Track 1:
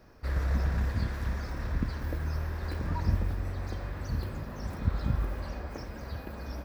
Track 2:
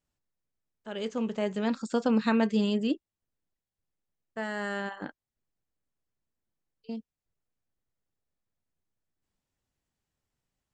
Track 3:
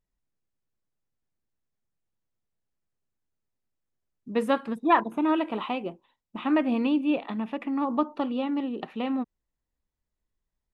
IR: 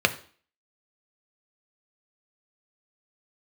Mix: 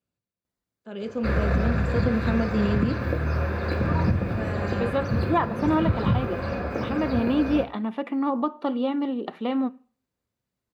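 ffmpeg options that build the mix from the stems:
-filter_complex "[0:a]highshelf=frequency=3900:gain=-10,adelay=1000,volume=1dB,asplit=2[link_01][link_02];[link_02]volume=-3.5dB[link_03];[1:a]lowshelf=frequency=380:gain=8.5,volume=-11dB,asplit=3[link_04][link_05][link_06];[link_05]volume=-9dB[link_07];[2:a]adelay=450,volume=1dB,asplit=2[link_08][link_09];[link_09]volume=-22dB[link_10];[link_06]apad=whole_len=493337[link_11];[link_08][link_11]sidechaincompress=threshold=-48dB:ratio=8:attack=16:release=462[link_12];[3:a]atrim=start_sample=2205[link_13];[link_03][link_07][link_10]amix=inputs=3:normalize=0[link_14];[link_14][link_13]afir=irnorm=-1:irlink=0[link_15];[link_01][link_04][link_12][link_15]amix=inputs=4:normalize=0,highpass=82,alimiter=limit=-12.5dB:level=0:latency=1:release=279"

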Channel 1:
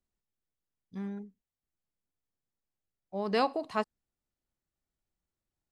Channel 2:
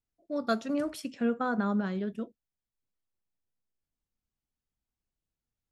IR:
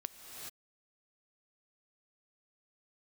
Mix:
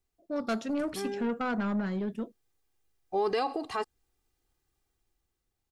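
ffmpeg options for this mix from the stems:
-filter_complex "[0:a]dynaudnorm=framelen=250:gausssize=7:maxgain=8dB,alimiter=limit=-19dB:level=0:latency=1:release=52,aecho=1:1:2.5:0.82,volume=0.5dB[link_01];[1:a]asoftclip=type=tanh:threshold=-28dB,volume=2.5dB[link_02];[link_01][link_02]amix=inputs=2:normalize=0,alimiter=limit=-20dB:level=0:latency=1:release=485"

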